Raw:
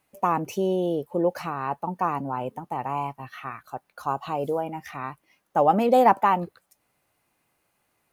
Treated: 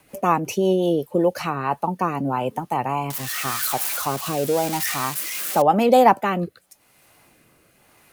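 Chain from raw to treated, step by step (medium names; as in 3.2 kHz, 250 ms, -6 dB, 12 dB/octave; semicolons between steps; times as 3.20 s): 3.10–5.62 s: zero-crossing glitches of -21 dBFS; rotary cabinet horn 5.5 Hz, later 0.9 Hz, at 1.11 s; three bands compressed up and down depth 40%; trim +7 dB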